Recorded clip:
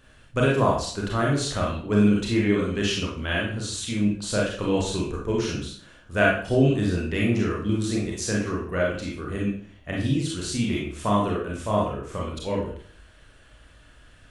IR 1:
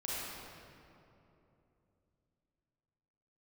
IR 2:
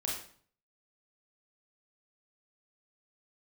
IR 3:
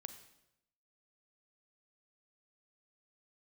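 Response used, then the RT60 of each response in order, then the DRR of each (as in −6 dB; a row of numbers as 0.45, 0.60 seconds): 2; 3.0, 0.50, 0.85 seconds; −8.0, −3.5, 9.0 decibels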